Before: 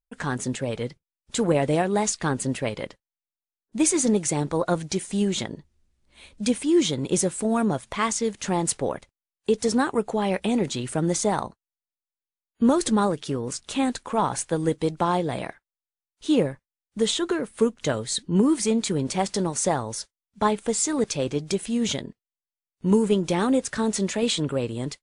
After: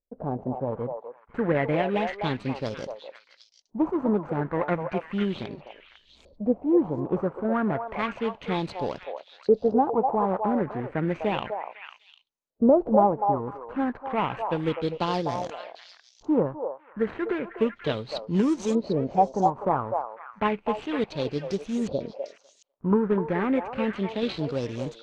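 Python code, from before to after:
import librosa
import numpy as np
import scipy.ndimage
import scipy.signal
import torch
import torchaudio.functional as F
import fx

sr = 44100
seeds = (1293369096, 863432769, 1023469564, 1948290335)

y = scipy.signal.medfilt(x, 25)
y = fx.filter_lfo_lowpass(y, sr, shape='saw_up', hz=0.32, low_hz=530.0, high_hz=7200.0, q=4.1)
y = fx.echo_stepped(y, sr, ms=250, hz=720.0, octaves=1.4, feedback_pct=70, wet_db=-2.0)
y = y * librosa.db_to_amplitude(-3.0)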